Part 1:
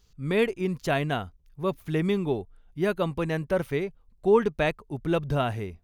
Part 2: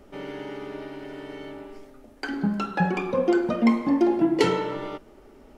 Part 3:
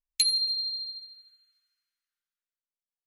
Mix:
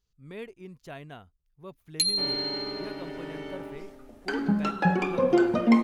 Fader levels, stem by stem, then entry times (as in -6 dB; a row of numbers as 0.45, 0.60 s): -16.5, 0.0, -1.0 dB; 0.00, 2.05, 1.80 s